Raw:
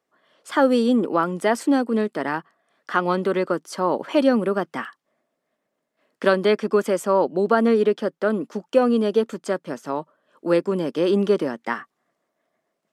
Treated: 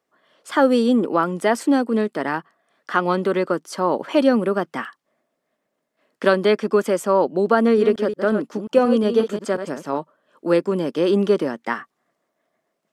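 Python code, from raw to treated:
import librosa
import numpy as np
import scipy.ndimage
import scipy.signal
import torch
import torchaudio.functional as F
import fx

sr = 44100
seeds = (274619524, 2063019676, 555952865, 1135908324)

y = fx.reverse_delay(x, sr, ms=179, wet_db=-8.5, at=(7.6, 9.98))
y = y * 10.0 ** (1.5 / 20.0)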